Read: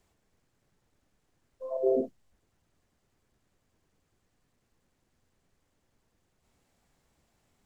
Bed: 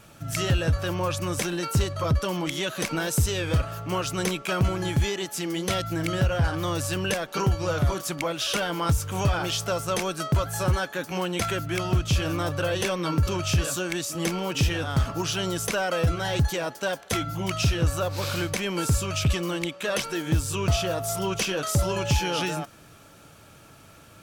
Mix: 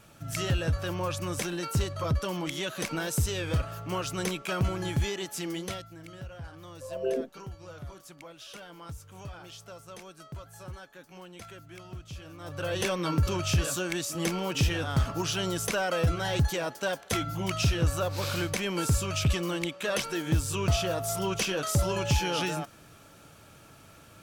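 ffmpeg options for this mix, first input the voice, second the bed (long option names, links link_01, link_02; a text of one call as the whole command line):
ffmpeg -i stem1.wav -i stem2.wav -filter_complex "[0:a]adelay=5200,volume=-3.5dB[link_01];[1:a]volume=12dB,afade=type=out:start_time=5.5:duration=0.38:silence=0.188365,afade=type=in:start_time=12.39:duration=0.45:silence=0.149624[link_02];[link_01][link_02]amix=inputs=2:normalize=0" out.wav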